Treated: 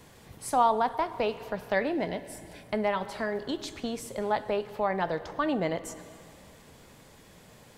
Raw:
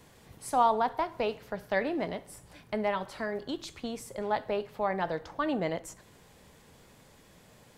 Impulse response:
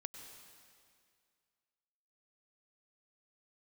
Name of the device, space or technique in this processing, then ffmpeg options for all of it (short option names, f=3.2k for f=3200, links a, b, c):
compressed reverb return: -filter_complex "[0:a]asplit=2[a][b];[1:a]atrim=start_sample=2205[c];[b][c]afir=irnorm=-1:irlink=0,acompressor=threshold=-36dB:ratio=6,volume=-1.5dB[d];[a][d]amix=inputs=2:normalize=0,asettb=1/sr,asplit=3[e][f][g];[e]atrim=end=1.924[h];[f]atrim=start=1.92:end=2.64,asetpts=PTS-STARTPTS,afade=t=in:d=0.004:c=qsin,afade=t=out:st=0.716:d=0.004:c=qsin,bandreject=f=1.2k:w=5[i];[g]atrim=start=2.636[j];[h][i]acrossfade=d=0.004:c1=hsin:c2=qsin[k];[k][j]acrossfade=d=0.004:c1=qsin:c2=hsin"